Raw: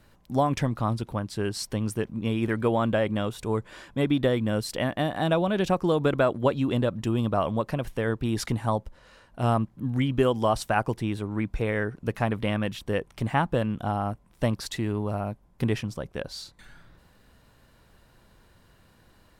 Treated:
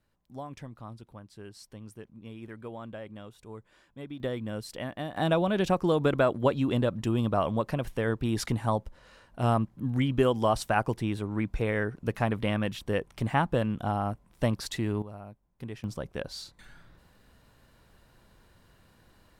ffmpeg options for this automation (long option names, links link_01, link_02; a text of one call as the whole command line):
ffmpeg -i in.wav -af "asetnsamples=nb_out_samples=441:pad=0,asendcmd='4.2 volume volume -9dB;5.17 volume volume -1.5dB;15.02 volume volume -14dB;15.84 volume volume -2dB',volume=-17dB" out.wav